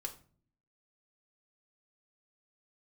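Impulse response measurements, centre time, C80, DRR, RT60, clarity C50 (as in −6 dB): 9 ms, 17.5 dB, 2.5 dB, 0.45 s, 13.0 dB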